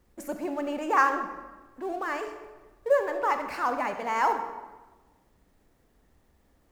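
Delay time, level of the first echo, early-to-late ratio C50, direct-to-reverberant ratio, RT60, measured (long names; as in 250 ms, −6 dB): no echo audible, no echo audible, 8.0 dB, 7.0 dB, 1.2 s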